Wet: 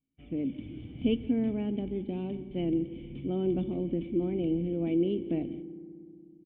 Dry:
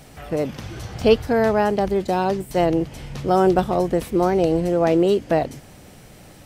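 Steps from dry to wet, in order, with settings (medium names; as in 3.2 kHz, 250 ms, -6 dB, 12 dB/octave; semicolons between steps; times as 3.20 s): gate -37 dBFS, range -32 dB; cascade formant filter i; delay 168 ms -20.5 dB; on a send at -15 dB: reverberation RT60 2.5 s, pre-delay 3 ms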